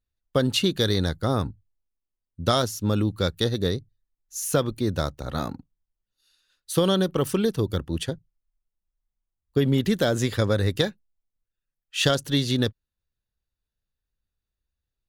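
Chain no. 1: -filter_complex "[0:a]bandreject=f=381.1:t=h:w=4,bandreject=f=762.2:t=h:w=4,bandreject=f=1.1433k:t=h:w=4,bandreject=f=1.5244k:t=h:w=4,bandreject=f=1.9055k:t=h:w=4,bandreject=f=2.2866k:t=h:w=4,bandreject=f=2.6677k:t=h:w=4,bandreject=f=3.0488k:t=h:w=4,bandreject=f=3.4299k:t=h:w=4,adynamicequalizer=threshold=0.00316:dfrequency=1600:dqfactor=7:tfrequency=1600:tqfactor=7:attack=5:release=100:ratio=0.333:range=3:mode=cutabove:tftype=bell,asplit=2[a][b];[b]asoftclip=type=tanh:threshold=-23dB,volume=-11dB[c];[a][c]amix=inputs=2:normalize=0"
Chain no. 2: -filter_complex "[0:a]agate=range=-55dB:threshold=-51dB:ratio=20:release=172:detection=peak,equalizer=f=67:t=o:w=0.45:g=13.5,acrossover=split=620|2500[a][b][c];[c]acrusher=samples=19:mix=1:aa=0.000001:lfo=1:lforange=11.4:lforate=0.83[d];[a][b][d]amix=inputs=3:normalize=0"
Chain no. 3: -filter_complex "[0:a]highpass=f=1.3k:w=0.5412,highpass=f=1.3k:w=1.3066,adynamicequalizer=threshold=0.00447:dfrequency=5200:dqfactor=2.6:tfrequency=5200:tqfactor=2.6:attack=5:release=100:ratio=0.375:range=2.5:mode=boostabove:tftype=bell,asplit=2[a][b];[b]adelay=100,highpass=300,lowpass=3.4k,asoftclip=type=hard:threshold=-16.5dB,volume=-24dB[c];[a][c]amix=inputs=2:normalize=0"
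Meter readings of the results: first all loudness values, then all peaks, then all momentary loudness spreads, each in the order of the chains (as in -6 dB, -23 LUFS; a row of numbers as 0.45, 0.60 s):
-24.0, -25.0, -30.0 LUFS; -5.5, -6.0, -7.0 dBFS; 8, 8, 14 LU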